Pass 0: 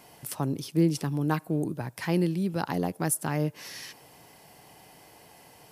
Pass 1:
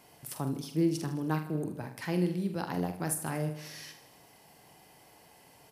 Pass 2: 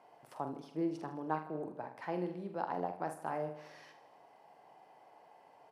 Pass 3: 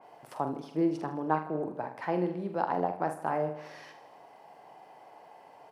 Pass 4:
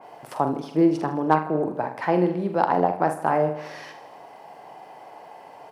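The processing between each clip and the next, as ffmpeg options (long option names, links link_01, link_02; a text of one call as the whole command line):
ffmpeg -i in.wav -filter_complex "[0:a]asplit=2[link_01][link_02];[link_02]adelay=45,volume=-8dB[link_03];[link_01][link_03]amix=inputs=2:normalize=0,asplit=2[link_04][link_05];[link_05]aecho=0:1:78|156|234|312|390|468:0.224|0.125|0.0702|0.0393|0.022|0.0123[link_06];[link_04][link_06]amix=inputs=2:normalize=0,volume=-5.5dB" out.wav
ffmpeg -i in.wav -af "bandpass=frequency=770:width_type=q:width=1.5:csg=0,volume=2.5dB" out.wav
ffmpeg -i in.wav -af "adynamicequalizer=threshold=0.00141:dfrequency=2800:dqfactor=0.7:tfrequency=2800:tqfactor=0.7:attack=5:release=100:ratio=0.375:range=3.5:mode=cutabove:tftype=highshelf,volume=7.5dB" out.wav
ffmpeg -i in.wav -af "asoftclip=type=hard:threshold=-15dB,volume=9dB" out.wav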